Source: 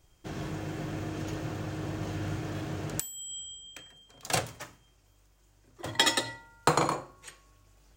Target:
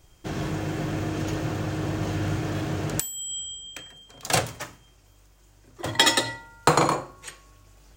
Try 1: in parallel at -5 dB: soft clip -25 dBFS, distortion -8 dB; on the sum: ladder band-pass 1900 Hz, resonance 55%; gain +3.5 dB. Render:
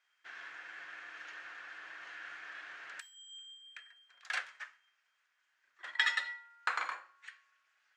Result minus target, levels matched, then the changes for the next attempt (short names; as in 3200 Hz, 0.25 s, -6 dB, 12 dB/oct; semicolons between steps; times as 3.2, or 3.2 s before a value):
2000 Hz band +8.0 dB
remove: ladder band-pass 1900 Hz, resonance 55%